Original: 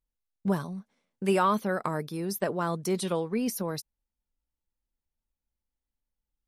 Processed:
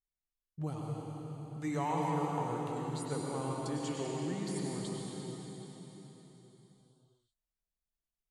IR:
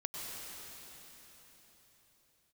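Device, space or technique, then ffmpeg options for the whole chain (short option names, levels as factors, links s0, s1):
slowed and reverbed: -filter_complex "[0:a]asetrate=34398,aresample=44100[s0];[1:a]atrim=start_sample=2205[s1];[s0][s1]afir=irnorm=-1:irlink=0,volume=0.376"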